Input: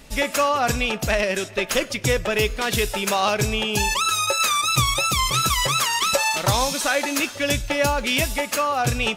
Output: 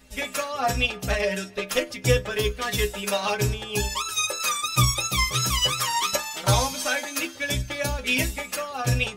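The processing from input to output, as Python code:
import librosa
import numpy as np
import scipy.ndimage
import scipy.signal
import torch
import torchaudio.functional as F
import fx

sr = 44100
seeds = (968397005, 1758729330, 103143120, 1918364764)

y = fx.stiff_resonator(x, sr, f0_hz=61.0, decay_s=0.38, stiffness=0.008)
y = fx.upward_expand(y, sr, threshold_db=-37.0, expansion=1.5)
y = y * 10.0 ** (8.0 / 20.0)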